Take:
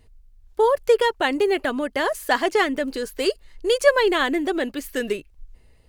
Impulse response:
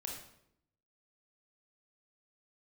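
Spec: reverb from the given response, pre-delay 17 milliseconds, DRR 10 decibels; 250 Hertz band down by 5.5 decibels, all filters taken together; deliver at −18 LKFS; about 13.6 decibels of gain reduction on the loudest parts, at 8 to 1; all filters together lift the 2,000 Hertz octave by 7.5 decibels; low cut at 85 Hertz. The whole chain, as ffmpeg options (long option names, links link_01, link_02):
-filter_complex "[0:a]highpass=85,equalizer=frequency=250:width_type=o:gain=-8,equalizer=frequency=2000:width_type=o:gain=9,acompressor=threshold=-22dB:ratio=8,asplit=2[link_01][link_02];[1:a]atrim=start_sample=2205,adelay=17[link_03];[link_02][link_03]afir=irnorm=-1:irlink=0,volume=-9dB[link_04];[link_01][link_04]amix=inputs=2:normalize=0,volume=9dB"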